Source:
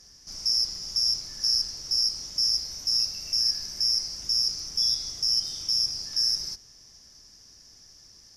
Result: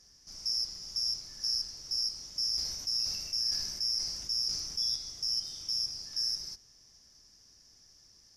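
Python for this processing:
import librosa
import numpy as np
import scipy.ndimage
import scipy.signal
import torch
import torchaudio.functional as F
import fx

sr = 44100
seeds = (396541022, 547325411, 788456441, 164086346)

y = fx.sustainer(x, sr, db_per_s=40.0, at=(2.55, 4.96))
y = y * librosa.db_to_amplitude(-7.5)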